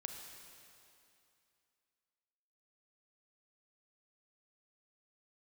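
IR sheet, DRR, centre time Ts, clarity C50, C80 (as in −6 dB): 3.0 dB, 73 ms, 4.0 dB, 5.0 dB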